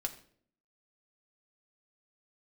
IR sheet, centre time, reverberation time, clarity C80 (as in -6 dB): 8 ms, 0.55 s, 16.0 dB